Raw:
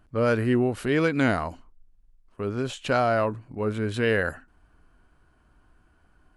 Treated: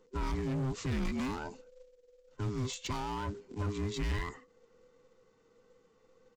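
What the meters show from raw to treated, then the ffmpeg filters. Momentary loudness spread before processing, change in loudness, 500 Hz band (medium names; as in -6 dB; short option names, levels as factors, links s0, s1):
9 LU, -11.0 dB, -17.0 dB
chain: -filter_complex "[0:a]afftfilt=real='real(if(between(b,1,1008),(2*floor((b-1)/24)+1)*24-b,b),0)':imag='imag(if(between(b,1,1008),(2*floor((b-1)/24)+1)*24-b,b),0)*if(between(b,1,1008),-1,1)':win_size=2048:overlap=0.75,bass=f=250:g=5,treble=f=4000:g=14,aresample=16000,acrusher=bits=5:mode=log:mix=0:aa=0.000001,aresample=44100,asoftclip=type=hard:threshold=0.0841,acrossover=split=220[s0][s1];[s1]acompressor=threshold=0.0316:ratio=3[s2];[s0][s2]amix=inputs=2:normalize=0,volume=0.422"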